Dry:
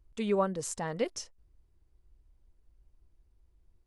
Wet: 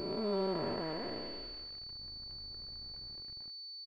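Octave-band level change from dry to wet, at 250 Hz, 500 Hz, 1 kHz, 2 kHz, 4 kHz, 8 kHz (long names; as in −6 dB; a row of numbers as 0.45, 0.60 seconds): −3.5 dB, −4.0 dB, −5.0 dB, −5.0 dB, +9.5 dB, below −30 dB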